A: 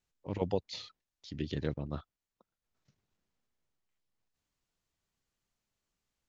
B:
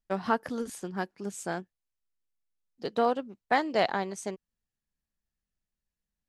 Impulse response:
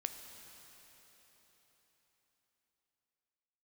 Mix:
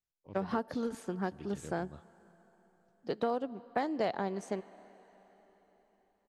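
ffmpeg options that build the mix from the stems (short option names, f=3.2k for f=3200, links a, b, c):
-filter_complex "[0:a]volume=-13dB,asplit=2[a][b];[b]volume=-18dB[c];[1:a]highshelf=f=3.2k:g=-11,adelay=250,volume=0dB,asplit=2[d][e];[e]volume=-14dB[f];[2:a]atrim=start_sample=2205[g];[c][f]amix=inputs=2:normalize=0[h];[h][g]afir=irnorm=-1:irlink=0[i];[a][d][i]amix=inputs=3:normalize=0,acrossover=split=690|4400[j][k][l];[j]acompressor=threshold=-31dB:ratio=4[m];[k]acompressor=threshold=-39dB:ratio=4[n];[l]acompressor=threshold=-51dB:ratio=4[o];[m][n][o]amix=inputs=3:normalize=0"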